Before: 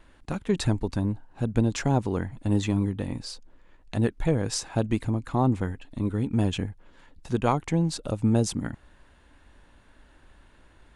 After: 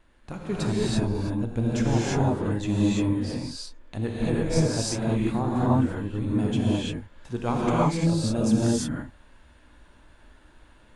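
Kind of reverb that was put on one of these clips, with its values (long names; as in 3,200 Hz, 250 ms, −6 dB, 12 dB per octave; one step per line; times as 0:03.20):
reverb whose tail is shaped and stops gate 370 ms rising, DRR −7 dB
level −6 dB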